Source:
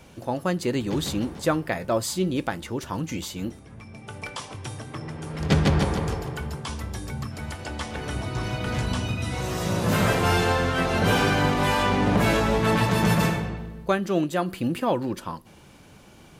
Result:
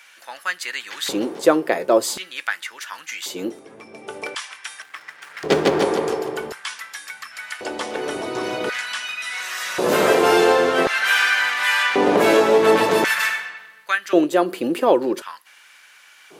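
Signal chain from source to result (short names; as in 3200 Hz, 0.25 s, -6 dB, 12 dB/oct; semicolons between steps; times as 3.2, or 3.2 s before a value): 4.82–5.82 backlash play -38.5 dBFS; LFO high-pass square 0.46 Hz 390–1700 Hz; gain +4.5 dB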